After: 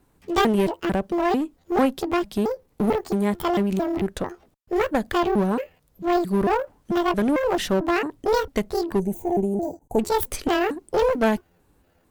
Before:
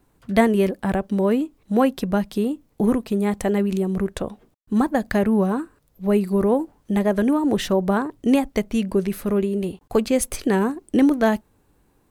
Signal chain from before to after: pitch shift switched off and on +9.5 st, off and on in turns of 223 ms; one-sided clip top -23 dBFS; time-frequency box 8.99–9.99 s, 960–5900 Hz -19 dB

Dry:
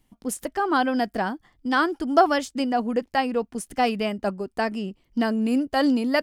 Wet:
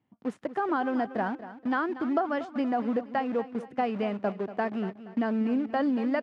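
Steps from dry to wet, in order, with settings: in parallel at -5 dB: bit crusher 5-bit; on the sum: high-pass 100 Hz 24 dB/octave; compression, threshold -18 dBFS, peak gain reduction 10.5 dB; low-pass 1.9 kHz 12 dB/octave; feedback delay 237 ms, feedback 36%, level -14 dB; trim -5.5 dB

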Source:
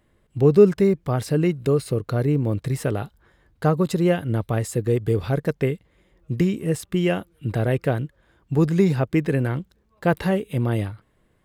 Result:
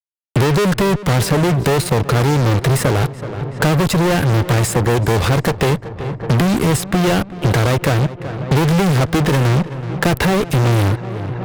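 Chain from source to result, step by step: fuzz box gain 38 dB, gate -39 dBFS; filtered feedback delay 377 ms, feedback 64%, low-pass 2.3 kHz, level -17.5 dB; three bands compressed up and down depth 70%

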